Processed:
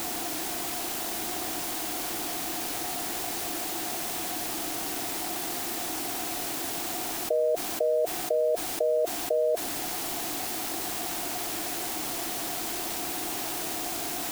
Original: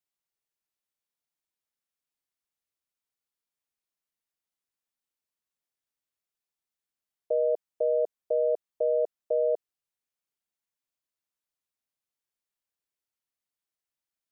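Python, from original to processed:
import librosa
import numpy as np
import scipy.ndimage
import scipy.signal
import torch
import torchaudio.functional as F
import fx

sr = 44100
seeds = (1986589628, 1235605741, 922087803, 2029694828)

p1 = fx.quant_dither(x, sr, seeds[0], bits=6, dither='triangular')
p2 = x + F.gain(torch.from_numpy(p1), -11.0).numpy()
p3 = fx.small_body(p2, sr, hz=(320.0, 710.0), ring_ms=35, db=16)
p4 = fx.env_flatten(p3, sr, amount_pct=70)
y = F.gain(torch.from_numpy(p4), -6.5).numpy()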